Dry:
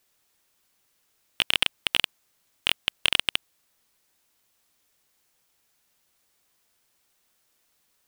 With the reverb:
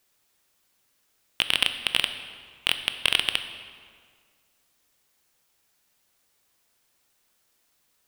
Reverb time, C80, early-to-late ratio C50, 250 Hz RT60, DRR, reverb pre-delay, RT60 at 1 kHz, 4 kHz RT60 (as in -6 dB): 1.9 s, 11.0 dB, 10.0 dB, 1.9 s, 8.5 dB, 17 ms, 1.9 s, 1.3 s